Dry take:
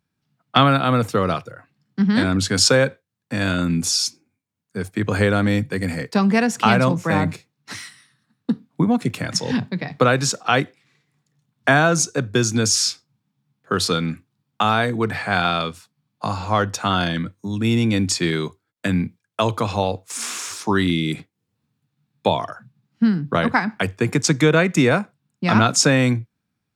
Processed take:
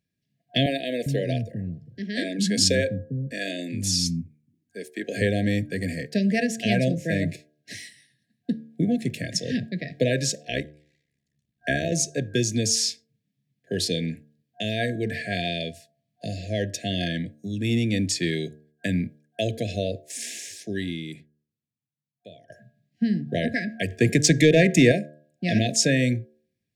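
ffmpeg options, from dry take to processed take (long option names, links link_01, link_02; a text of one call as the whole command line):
ffmpeg -i in.wav -filter_complex "[0:a]asettb=1/sr,asplit=3[link_01][link_02][link_03];[link_01]atrim=end=0.664[link_04];[link_02]atrim=start=0.66:end=5.22,asetpts=PTS-STARTPTS,afade=type=in:duration=0.004:curve=qsin,afade=type=out:start_time=4.556:duration=0.004:curve=qsin,acrossover=split=250[link_05][link_06];[link_05]adelay=400[link_07];[link_07][link_06]amix=inputs=2:normalize=0,atrim=end_sample=201096[link_08];[link_03]atrim=start=5.216[link_09];[link_04][link_08]acrossfade=duration=0.004:curve1=hsin:curve2=qsin[link_10];[link_10][link_09]acrossfade=duration=0.004:curve1=qsin:curve2=hsin,asettb=1/sr,asplit=3[link_11][link_12][link_13];[link_11]atrim=end=10.454[link_14];[link_12]atrim=start=10.45:end=11.92,asetpts=PTS-STARTPTS,afade=type=in:duration=0.004:curve=qsin,afade=type=out:start_time=1.466:duration=0.004:curve=qsin,tremolo=f=68:d=0.824[link_15];[link_13]atrim=start=11.916[link_16];[link_14][link_15]acrossfade=duration=0.004:curve1=hsin:curve2=qsin[link_17];[link_17][link_16]acrossfade=duration=0.004:curve1=qsin:curve2=hsin,asettb=1/sr,asplit=3[link_18][link_19][link_20];[link_18]atrim=end=23.904[link_21];[link_19]atrim=start=23.9:end=24.92,asetpts=PTS-STARTPTS,afade=type=in:duration=0.004:curve=qsin,afade=type=out:start_time=1.016:duration=0.004:curve=qsin,acontrast=53[link_22];[link_20]atrim=start=24.916[link_23];[link_21][link_22]acrossfade=duration=0.004:curve1=hsin:curve2=qsin[link_24];[link_24][link_23]acrossfade=duration=0.004:curve1=qsin:curve2=hsin,asplit=2[link_25][link_26];[link_25]atrim=end=22.5,asetpts=PTS-STARTPTS,afade=type=out:start_time=20.03:duration=2.47:curve=qua:silence=0.0841395[link_27];[link_26]atrim=start=22.5,asetpts=PTS-STARTPTS,afade=type=in:duration=0.004:curve=hsin:silence=0.0841395[link_28];[link_27][link_28]concat=n=2:v=0:a=1,afftfilt=real='re*(1-between(b*sr/4096,720,1600))':imag='im*(1-between(b*sr/4096,720,1600))':win_size=4096:overlap=0.75,bandreject=frequency=75.02:width_type=h:width=4,bandreject=frequency=150.04:width_type=h:width=4,bandreject=frequency=225.06:width_type=h:width=4,bandreject=frequency=300.08:width_type=h:width=4,bandreject=frequency=375.1:width_type=h:width=4,bandreject=frequency=450.12:width_type=h:width=4,bandreject=frequency=525.14:width_type=h:width=4,bandreject=frequency=600.16:width_type=h:width=4,bandreject=frequency=675.18:width_type=h:width=4,bandreject=frequency=750.2:width_type=h:width=4,bandreject=frequency=825.22:width_type=h:width=4,bandreject=frequency=900.24:width_type=h:width=4,bandreject=frequency=975.26:width_type=h:width=4,bandreject=frequency=1050.28:width_type=h:width=4,bandreject=frequency=1125.3:width_type=h:width=4,bandreject=frequency=1200.32:width_type=h:width=4,bandreject=frequency=1275.34:width_type=h:width=4,bandreject=frequency=1350.36:width_type=h:width=4,bandreject=frequency=1425.38:width_type=h:width=4,bandreject=frequency=1500.4:width_type=h:width=4,bandreject=frequency=1575.42:width_type=h:width=4,bandreject=frequency=1650.44:width_type=h:width=4,volume=-4.5dB" out.wav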